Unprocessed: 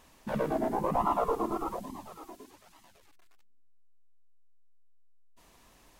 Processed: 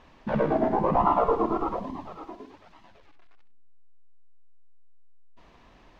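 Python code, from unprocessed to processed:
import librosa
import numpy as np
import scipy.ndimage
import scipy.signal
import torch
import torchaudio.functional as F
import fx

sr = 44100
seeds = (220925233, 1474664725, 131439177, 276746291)

p1 = fx.air_absorb(x, sr, metres=230.0)
p2 = p1 + fx.echo_multitap(p1, sr, ms=(65, 100), db=(-12.5, -20.0), dry=0)
y = p2 * librosa.db_to_amplitude(6.5)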